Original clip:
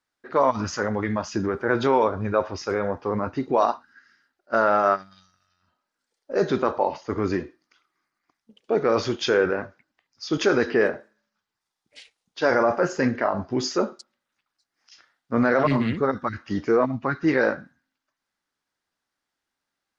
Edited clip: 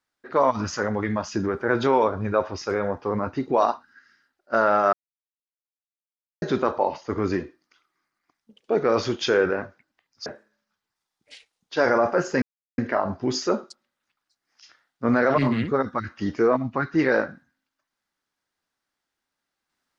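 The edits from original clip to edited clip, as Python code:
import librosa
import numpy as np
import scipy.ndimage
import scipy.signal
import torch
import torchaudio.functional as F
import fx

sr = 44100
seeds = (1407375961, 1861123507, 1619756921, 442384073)

y = fx.edit(x, sr, fx.silence(start_s=4.93, length_s=1.49),
    fx.cut(start_s=10.26, length_s=0.65),
    fx.insert_silence(at_s=13.07, length_s=0.36), tone=tone)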